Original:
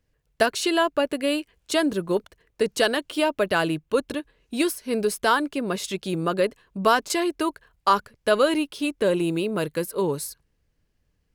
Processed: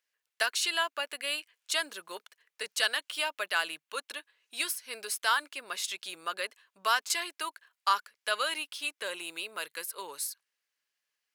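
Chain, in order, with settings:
high-pass filter 1,400 Hz 12 dB per octave
level −1.5 dB

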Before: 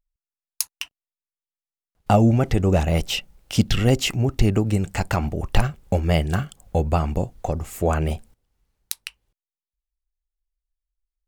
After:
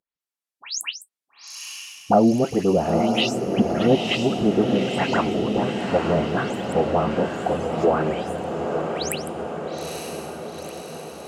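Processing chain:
every frequency bin delayed by itself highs late, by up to 205 ms
treble cut that deepens with the level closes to 760 Hz, closed at −15.5 dBFS
high-pass filter 240 Hz 12 dB per octave
on a send: feedback delay with all-pass diffusion 905 ms, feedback 63%, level −4.5 dB
on the sum: level +4.5 dB

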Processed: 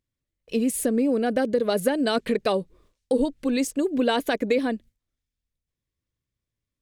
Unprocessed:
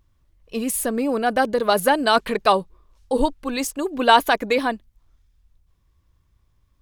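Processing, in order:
noise gate with hold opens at −45 dBFS
octave-band graphic EQ 125/250/500/1,000/2,000/4,000/8,000 Hz +9/+10/+10/−6/+6/+3/+6 dB
downward compressor 2.5 to 1, threshold −14 dBFS, peak gain reduction 8 dB
one half of a high-frequency compander encoder only
level −7 dB

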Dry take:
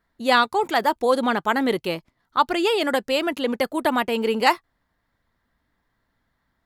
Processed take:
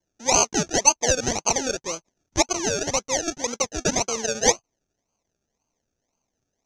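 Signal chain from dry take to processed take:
parametric band 750 Hz +14 dB 2.5 octaves
sample-and-hold swept by an LFO 34×, swing 60% 1.9 Hz
low-pass with resonance 6,200 Hz, resonance Q 13
level −15.5 dB

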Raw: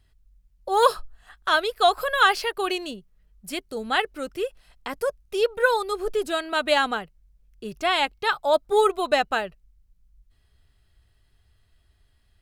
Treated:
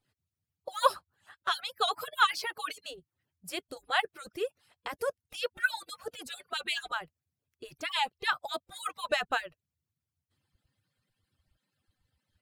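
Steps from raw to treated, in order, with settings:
harmonic-percussive split with one part muted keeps percussive
level −4.5 dB

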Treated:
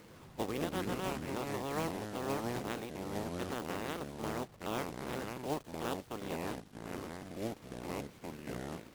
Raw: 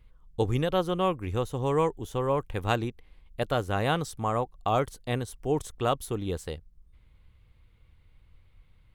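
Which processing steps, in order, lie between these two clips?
ceiling on every frequency bin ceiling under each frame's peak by 28 dB
upward compression, threshold −39 dBFS
resonant band-pass 320 Hz, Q 0.71
log-companded quantiser 4 bits
delay with pitch and tempo change per echo 83 ms, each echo −5 semitones, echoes 2
level −6 dB

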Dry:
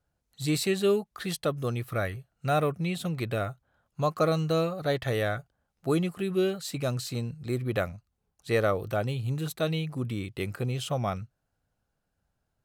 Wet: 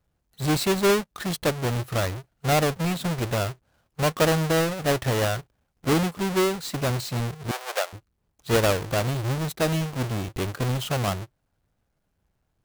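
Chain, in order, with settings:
each half-wave held at its own peak
0:07.51–0:07.93: inverse Chebyshev high-pass filter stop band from 270 Hz, stop band 40 dB

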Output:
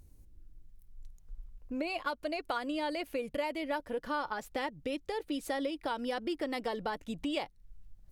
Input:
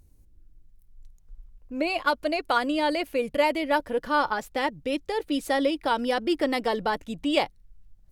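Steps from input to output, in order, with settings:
downward compressor 3 to 1, threshold −35 dBFS, peak gain reduction 13 dB

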